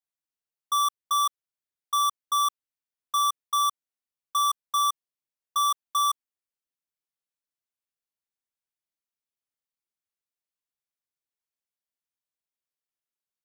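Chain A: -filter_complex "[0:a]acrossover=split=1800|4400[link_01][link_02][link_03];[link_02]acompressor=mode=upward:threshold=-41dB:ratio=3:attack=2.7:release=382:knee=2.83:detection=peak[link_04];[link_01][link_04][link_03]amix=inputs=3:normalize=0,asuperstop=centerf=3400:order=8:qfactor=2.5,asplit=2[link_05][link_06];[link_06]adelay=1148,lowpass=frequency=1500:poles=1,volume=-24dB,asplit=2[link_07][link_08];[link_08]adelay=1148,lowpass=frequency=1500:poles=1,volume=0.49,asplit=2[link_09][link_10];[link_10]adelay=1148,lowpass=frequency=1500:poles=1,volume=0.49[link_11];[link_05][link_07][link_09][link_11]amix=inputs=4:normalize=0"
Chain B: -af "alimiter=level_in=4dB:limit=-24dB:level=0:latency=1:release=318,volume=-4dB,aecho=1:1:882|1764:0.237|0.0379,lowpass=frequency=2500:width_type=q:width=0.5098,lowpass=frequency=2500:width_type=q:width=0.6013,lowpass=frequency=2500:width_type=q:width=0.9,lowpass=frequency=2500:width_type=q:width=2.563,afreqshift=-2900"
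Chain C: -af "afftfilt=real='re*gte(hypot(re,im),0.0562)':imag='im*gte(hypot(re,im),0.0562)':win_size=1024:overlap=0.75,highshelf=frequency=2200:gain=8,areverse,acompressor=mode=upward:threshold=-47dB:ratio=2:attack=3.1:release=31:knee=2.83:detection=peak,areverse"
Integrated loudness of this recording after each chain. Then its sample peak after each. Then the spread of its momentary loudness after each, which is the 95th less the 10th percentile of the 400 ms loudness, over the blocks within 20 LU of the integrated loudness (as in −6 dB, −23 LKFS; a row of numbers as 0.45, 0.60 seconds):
−26.5, −32.0, −22.0 LKFS; −18.5, −24.0, −12.0 dBFS; 4, 14, 4 LU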